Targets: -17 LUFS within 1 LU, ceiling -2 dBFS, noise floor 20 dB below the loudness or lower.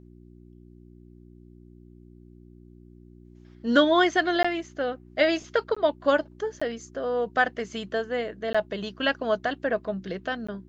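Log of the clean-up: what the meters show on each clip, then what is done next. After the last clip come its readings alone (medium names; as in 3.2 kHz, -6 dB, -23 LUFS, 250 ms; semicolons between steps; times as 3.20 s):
dropouts 5; longest dropout 15 ms; hum 60 Hz; highest harmonic 360 Hz; hum level -47 dBFS; loudness -26.0 LUFS; peak level -7.5 dBFS; loudness target -17.0 LUFS
-> interpolate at 4.43/5.75/6.60/8.53/10.47 s, 15 ms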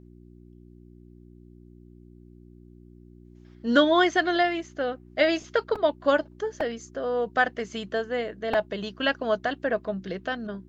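dropouts 0; hum 60 Hz; highest harmonic 360 Hz; hum level -47 dBFS
-> de-hum 60 Hz, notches 6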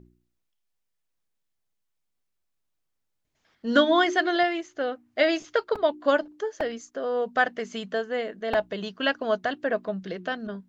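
hum not found; loudness -26.5 LUFS; peak level -8.0 dBFS; loudness target -17.0 LUFS
-> trim +9.5 dB; peak limiter -2 dBFS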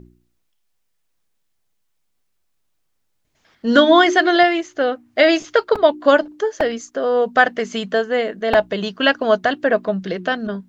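loudness -17.5 LUFS; peak level -2.0 dBFS; noise floor -68 dBFS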